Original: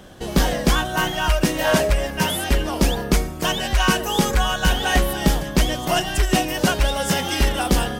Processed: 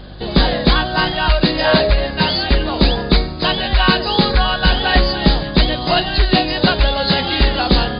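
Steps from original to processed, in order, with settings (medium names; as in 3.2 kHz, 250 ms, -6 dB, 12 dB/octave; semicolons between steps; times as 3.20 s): knee-point frequency compression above 3.4 kHz 4:1; hum 50 Hz, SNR 21 dB; trim +4.5 dB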